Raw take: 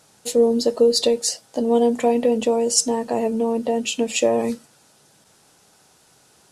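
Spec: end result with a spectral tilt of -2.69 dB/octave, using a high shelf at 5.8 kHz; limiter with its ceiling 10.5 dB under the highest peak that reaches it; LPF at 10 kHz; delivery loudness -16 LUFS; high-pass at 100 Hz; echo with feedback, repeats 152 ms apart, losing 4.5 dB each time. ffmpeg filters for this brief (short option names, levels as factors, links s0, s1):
-af "highpass=100,lowpass=10000,highshelf=f=5800:g=8,alimiter=limit=0.282:level=0:latency=1,aecho=1:1:152|304|456|608|760|912|1064|1216|1368:0.596|0.357|0.214|0.129|0.0772|0.0463|0.0278|0.0167|0.01,volume=1.41"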